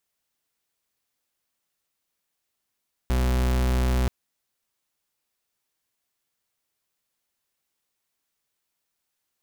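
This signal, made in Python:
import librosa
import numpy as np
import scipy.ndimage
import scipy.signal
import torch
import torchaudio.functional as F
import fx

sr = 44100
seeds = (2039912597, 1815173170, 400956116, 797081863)

y = fx.pulse(sr, length_s=0.98, hz=62.9, level_db=-22.0, duty_pct=41)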